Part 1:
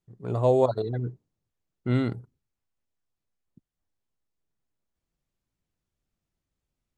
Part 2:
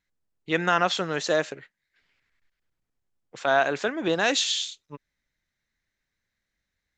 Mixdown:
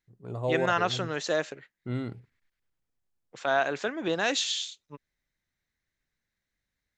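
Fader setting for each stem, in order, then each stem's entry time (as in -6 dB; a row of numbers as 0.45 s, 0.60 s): -8.0 dB, -4.0 dB; 0.00 s, 0.00 s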